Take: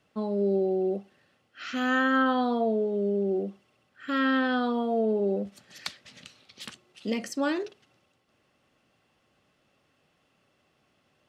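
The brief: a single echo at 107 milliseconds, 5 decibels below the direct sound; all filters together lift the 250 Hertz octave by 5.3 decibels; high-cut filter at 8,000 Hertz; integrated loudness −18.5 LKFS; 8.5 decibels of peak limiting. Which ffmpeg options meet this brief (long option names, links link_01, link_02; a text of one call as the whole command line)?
ffmpeg -i in.wav -af "lowpass=8000,equalizer=frequency=250:width_type=o:gain=6,alimiter=limit=-20.5dB:level=0:latency=1,aecho=1:1:107:0.562,volume=9.5dB" out.wav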